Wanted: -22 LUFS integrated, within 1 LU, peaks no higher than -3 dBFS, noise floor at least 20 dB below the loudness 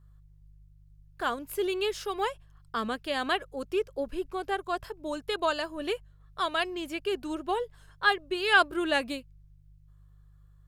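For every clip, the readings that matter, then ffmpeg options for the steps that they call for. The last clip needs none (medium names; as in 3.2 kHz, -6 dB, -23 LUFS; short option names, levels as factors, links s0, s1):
hum 50 Hz; highest harmonic 150 Hz; hum level -53 dBFS; loudness -30.5 LUFS; peak level -9.5 dBFS; loudness target -22.0 LUFS
-> -af "bandreject=f=50:t=h:w=4,bandreject=f=100:t=h:w=4,bandreject=f=150:t=h:w=4"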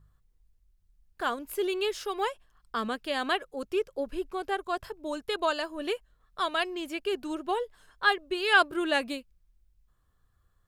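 hum not found; loudness -30.0 LUFS; peak level -9.5 dBFS; loudness target -22.0 LUFS
-> -af "volume=2.51,alimiter=limit=0.708:level=0:latency=1"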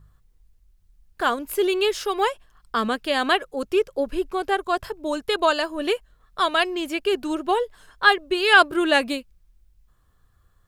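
loudness -22.5 LUFS; peak level -3.0 dBFS; noise floor -61 dBFS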